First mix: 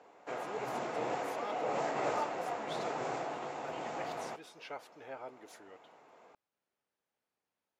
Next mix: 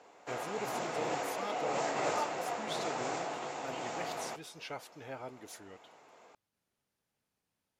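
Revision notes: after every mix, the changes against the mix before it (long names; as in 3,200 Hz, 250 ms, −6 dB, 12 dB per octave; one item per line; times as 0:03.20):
speech: add bass and treble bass +14 dB, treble 0 dB
master: add high-shelf EQ 3,400 Hz +10.5 dB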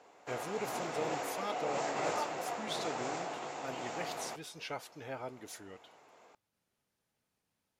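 speech: send on
background: send −10.0 dB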